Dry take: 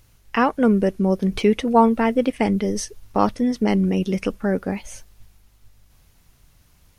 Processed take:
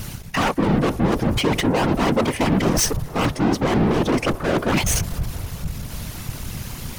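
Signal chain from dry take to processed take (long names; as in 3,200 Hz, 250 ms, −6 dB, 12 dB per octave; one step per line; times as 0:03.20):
gain on a spectral selection 0:03.37–0:04.73, 220–1,200 Hz +8 dB
reversed playback
downward compressor 12 to 1, threshold −28 dBFS, peak gain reduction 19.5 dB
reversed playback
sine wavefolder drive 10 dB, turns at −17.5 dBFS
leveller curve on the samples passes 3
random phases in short frames
on a send: delay with a band-pass on its return 223 ms, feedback 71%, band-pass 800 Hz, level −17 dB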